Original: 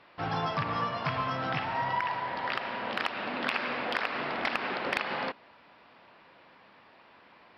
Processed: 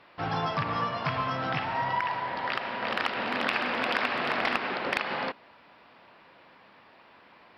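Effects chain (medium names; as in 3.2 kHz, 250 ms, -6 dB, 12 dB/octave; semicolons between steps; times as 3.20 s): 2.47–4.58 s: bouncing-ball echo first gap 350 ms, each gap 0.6×, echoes 5; trim +1.5 dB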